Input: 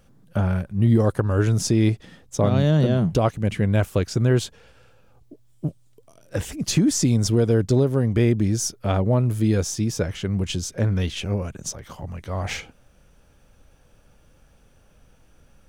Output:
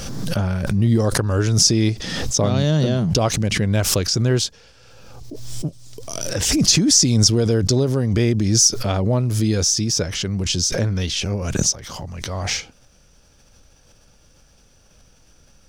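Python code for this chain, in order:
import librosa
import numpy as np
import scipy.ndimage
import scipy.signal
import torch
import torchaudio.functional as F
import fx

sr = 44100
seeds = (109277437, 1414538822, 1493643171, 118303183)

y = fx.peak_eq(x, sr, hz=5300.0, db=14.0, octaves=1.0)
y = fx.pre_swell(y, sr, db_per_s=33.0)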